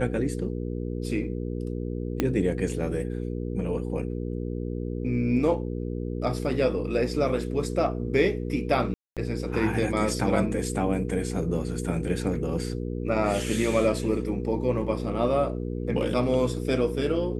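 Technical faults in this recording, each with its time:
hum 60 Hz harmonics 8 -31 dBFS
2.20 s: pop -10 dBFS
8.94–9.17 s: dropout 227 ms

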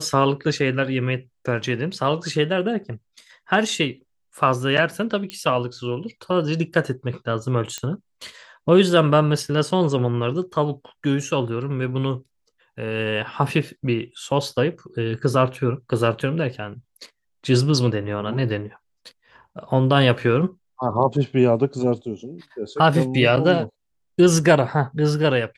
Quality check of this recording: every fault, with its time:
5.30 s: pop -14 dBFS
7.78 s: pop -12 dBFS

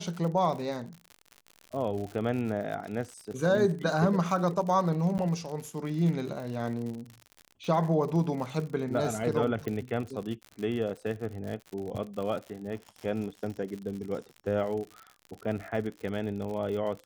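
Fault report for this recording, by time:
crackle 81 per s -36 dBFS
5.18–5.19 s: dropout 9.8 ms
9.68 s: pop -21 dBFS

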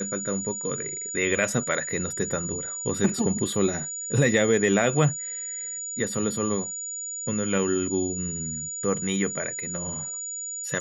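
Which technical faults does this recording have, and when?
whine 6.9 kHz -31 dBFS

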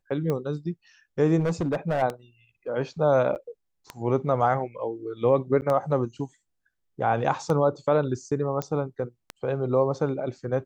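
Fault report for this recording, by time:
tick 33 1/3 rpm -16 dBFS
1.39–2.03 s: clipped -21 dBFS
3.35–3.36 s: dropout 9 ms
5.61–5.62 s: dropout 9.6 ms
8.62 s: pop -15 dBFS

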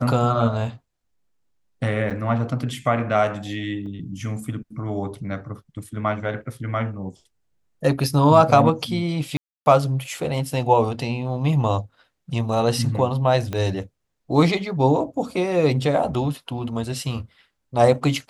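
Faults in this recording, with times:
2.10–2.11 s: dropout 7.7 ms
3.86–3.87 s: dropout 5 ms
9.37–9.66 s: dropout 290 ms
13.53 s: pop -14 dBFS

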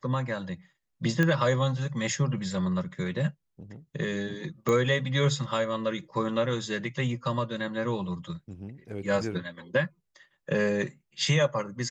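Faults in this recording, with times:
1.23 s: pop -13 dBFS
4.69 s: pop -16 dBFS

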